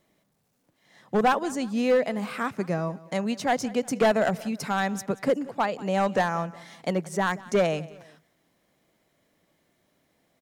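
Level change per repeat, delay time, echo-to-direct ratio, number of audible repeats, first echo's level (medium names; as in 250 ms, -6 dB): -7.5 dB, 182 ms, -19.5 dB, 2, -20.0 dB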